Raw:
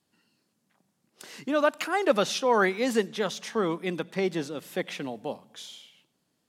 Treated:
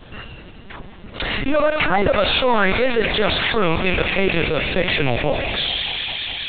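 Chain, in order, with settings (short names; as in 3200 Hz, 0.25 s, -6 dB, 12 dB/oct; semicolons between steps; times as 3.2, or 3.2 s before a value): rattling part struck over -38 dBFS, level -25 dBFS; 2.09–4.66 HPF 390 Hz 12 dB/oct; sample leveller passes 2; thin delay 0.204 s, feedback 66%, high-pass 2000 Hz, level -10 dB; reverb RT60 1.1 s, pre-delay 3 ms, DRR 14.5 dB; LPC vocoder at 8 kHz pitch kept; fast leveller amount 70%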